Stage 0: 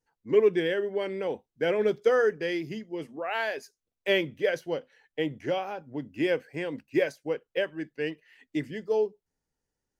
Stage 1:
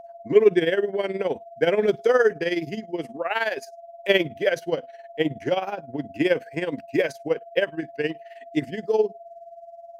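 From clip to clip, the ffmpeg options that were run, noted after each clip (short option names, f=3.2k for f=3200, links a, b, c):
-af "aeval=exprs='val(0)+0.00562*sin(2*PI*680*n/s)':c=same,tremolo=f=19:d=0.72,volume=8dB"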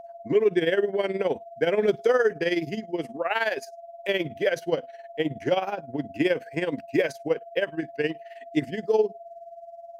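-af "alimiter=limit=-11.5dB:level=0:latency=1:release=132"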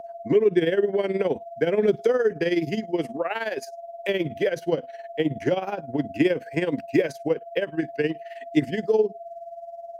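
-filter_complex "[0:a]acrossover=split=430[a][b];[b]acompressor=threshold=-31dB:ratio=6[c];[a][c]amix=inputs=2:normalize=0,volume=4.5dB"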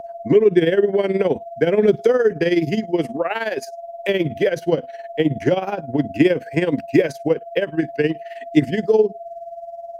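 -af "lowshelf=f=200:g=4.5,volume=4.5dB"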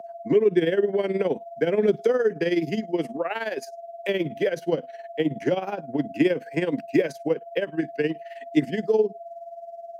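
-af "highpass=f=150:w=0.5412,highpass=f=150:w=1.3066,volume=-5.5dB"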